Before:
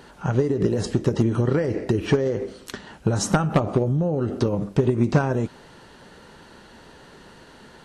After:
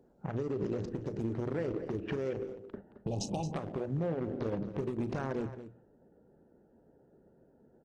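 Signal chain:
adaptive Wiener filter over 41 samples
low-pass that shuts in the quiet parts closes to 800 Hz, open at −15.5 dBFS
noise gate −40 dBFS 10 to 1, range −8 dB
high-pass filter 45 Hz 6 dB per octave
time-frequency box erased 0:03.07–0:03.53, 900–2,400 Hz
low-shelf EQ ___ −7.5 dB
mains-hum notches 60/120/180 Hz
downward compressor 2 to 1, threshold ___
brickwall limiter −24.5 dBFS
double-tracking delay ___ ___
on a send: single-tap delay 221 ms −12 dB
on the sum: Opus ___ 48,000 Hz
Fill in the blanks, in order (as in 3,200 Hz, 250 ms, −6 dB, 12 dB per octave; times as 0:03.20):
300 Hz, −33 dBFS, 36 ms, −14 dB, 16 kbit/s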